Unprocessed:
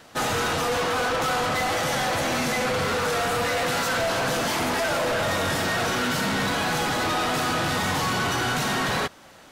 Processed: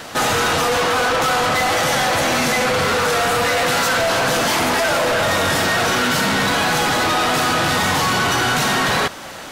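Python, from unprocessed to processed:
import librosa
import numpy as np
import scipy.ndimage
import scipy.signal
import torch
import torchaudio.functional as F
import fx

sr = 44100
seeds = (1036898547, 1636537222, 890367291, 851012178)

p1 = fx.low_shelf(x, sr, hz=430.0, db=-3.5)
p2 = fx.over_compress(p1, sr, threshold_db=-34.0, ratio=-1.0)
p3 = p1 + (p2 * 10.0 ** (0.5 / 20.0))
y = p3 * 10.0 ** (5.0 / 20.0)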